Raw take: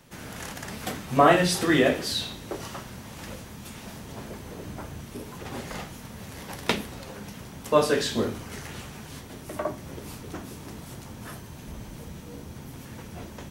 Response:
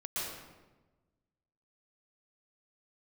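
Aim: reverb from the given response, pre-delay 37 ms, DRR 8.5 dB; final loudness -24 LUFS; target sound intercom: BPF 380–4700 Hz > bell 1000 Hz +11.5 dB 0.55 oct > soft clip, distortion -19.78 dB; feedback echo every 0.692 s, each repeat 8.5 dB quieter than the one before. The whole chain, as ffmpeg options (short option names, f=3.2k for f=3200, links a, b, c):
-filter_complex "[0:a]aecho=1:1:692|1384|2076|2768:0.376|0.143|0.0543|0.0206,asplit=2[a][b];[1:a]atrim=start_sample=2205,adelay=37[c];[b][c]afir=irnorm=-1:irlink=0,volume=-12dB[d];[a][d]amix=inputs=2:normalize=0,highpass=380,lowpass=4.7k,equalizer=f=1k:t=o:w=0.55:g=11.5,asoftclip=threshold=-4dB,volume=1dB"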